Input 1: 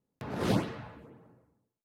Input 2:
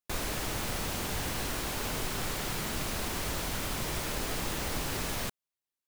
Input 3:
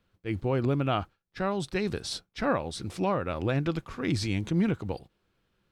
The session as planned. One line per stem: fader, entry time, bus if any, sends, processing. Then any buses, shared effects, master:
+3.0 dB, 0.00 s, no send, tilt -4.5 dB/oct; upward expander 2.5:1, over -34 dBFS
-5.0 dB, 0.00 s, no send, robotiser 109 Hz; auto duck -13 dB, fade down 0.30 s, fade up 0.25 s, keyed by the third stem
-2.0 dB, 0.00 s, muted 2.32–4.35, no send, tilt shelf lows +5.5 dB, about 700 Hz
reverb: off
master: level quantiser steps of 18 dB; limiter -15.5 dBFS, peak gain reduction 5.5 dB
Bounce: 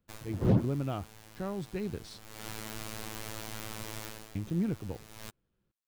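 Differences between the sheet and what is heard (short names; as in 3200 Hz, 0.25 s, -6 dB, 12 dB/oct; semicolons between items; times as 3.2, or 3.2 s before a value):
stem 3 -2.0 dB -> -9.5 dB; master: missing level quantiser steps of 18 dB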